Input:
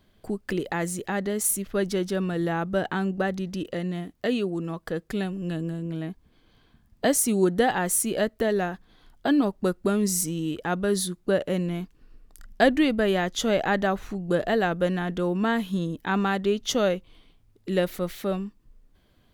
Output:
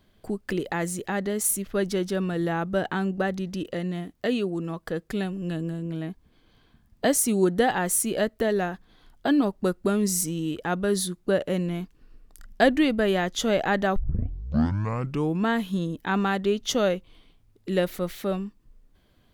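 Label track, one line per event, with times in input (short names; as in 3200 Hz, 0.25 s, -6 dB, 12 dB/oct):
13.960000	13.960000	tape start 1.48 s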